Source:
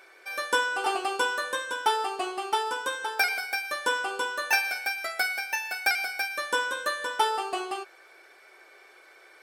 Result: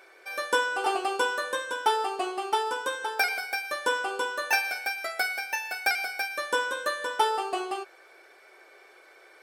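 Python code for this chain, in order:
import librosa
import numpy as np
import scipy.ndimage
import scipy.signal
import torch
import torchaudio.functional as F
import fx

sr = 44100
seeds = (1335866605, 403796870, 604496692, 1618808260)

y = fx.peak_eq(x, sr, hz=500.0, db=4.0, octaves=1.6)
y = y * librosa.db_to_amplitude(-1.5)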